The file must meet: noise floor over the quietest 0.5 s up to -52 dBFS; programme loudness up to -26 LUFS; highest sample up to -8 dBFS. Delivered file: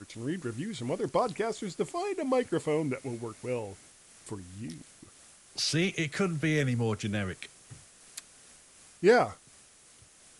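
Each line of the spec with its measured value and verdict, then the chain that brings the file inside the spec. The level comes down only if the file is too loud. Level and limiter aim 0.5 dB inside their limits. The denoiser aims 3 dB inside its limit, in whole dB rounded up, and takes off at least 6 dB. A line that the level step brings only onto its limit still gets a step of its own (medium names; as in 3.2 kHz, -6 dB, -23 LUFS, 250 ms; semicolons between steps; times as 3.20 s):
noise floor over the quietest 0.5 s -58 dBFS: pass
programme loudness -30.5 LUFS: pass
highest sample -10.0 dBFS: pass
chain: none needed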